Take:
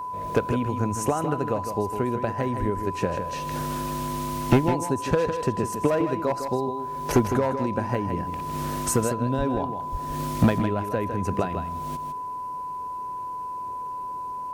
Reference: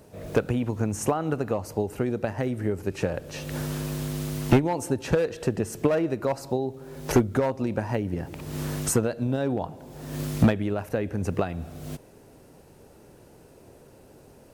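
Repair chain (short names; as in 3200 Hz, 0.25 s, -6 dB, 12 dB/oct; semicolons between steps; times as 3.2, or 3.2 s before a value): notch 1000 Hz, Q 30; de-plosive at 2.59/9.37/9.91; inverse comb 0.157 s -8 dB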